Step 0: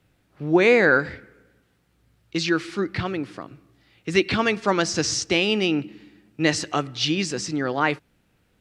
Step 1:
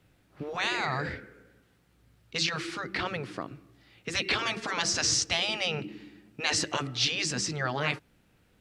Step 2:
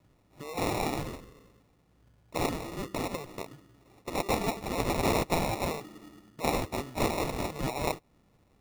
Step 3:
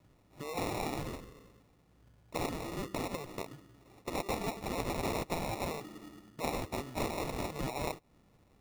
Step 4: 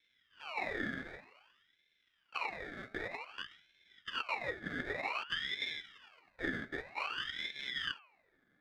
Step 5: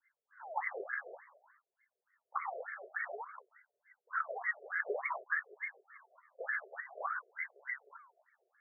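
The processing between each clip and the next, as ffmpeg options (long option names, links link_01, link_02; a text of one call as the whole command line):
ffmpeg -i in.wav -af "afftfilt=real='re*lt(hypot(re,im),0.251)':imag='im*lt(hypot(re,im),0.251)':win_size=1024:overlap=0.75" out.wav
ffmpeg -i in.wav -filter_complex "[0:a]acrossover=split=470|920[link_01][link_02][link_03];[link_01]acompressor=threshold=-45dB:ratio=6[link_04];[link_04][link_02][link_03]amix=inputs=3:normalize=0,acrusher=samples=28:mix=1:aa=0.000001" out.wav
ffmpeg -i in.wav -af "acompressor=threshold=-34dB:ratio=2.5" out.wav
ffmpeg -i in.wav -filter_complex "[0:a]asplit=3[link_01][link_02][link_03];[link_01]bandpass=frequency=730:width_type=q:width=8,volume=0dB[link_04];[link_02]bandpass=frequency=1090:width_type=q:width=8,volume=-6dB[link_05];[link_03]bandpass=frequency=2440:width_type=q:width=8,volume=-9dB[link_06];[link_04][link_05][link_06]amix=inputs=3:normalize=0,bandreject=frequency=145.1:width_type=h:width=4,bandreject=frequency=290.2:width_type=h:width=4,bandreject=frequency=435.3:width_type=h:width=4,bandreject=frequency=580.4:width_type=h:width=4,bandreject=frequency=725.5:width_type=h:width=4,bandreject=frequency=870.6:width_type=h:width=4,bandreject=frequency=1015.7:width_type=h:width=4,bandreject=frequency=1160.8:width_type=h:width=4,bandreject=frequency=1305.9:width_type=h:width=4,bandreject=frequency=1451:width_type=h:width=4,bandreject=frequency=1596.1:width_type=h:width=4,aeval=exprs='val(0)*sin(2*PI*1900*n/s+1900*0.5/0.53*sin(2*PI*0.53*n/s))':channel_layout=same,volume=9.5dB" out.wav
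ffmpeg -i in.wav -af "afftfilt=real='re*between(b*sr/1024,490*pow(1600/490,0.5+0.5*sin(2*PI*3.4*pts/sr))/1.41,490*pow(1600/490,0.5+0.5*sin(2*PI*3.4*pts/sr))*1.41)':imag='im*between(b*sr/1024,490*pow(1600/490,0.5+0.5*sin(2*PI*3.4*pts/sr))/1.41,490*pow(1600/490,0.5+0.5*sin(2*PI*3.4*pts/sr))*1.41)':win_size=1024:overlap=0.75,volume=7dB" out.wav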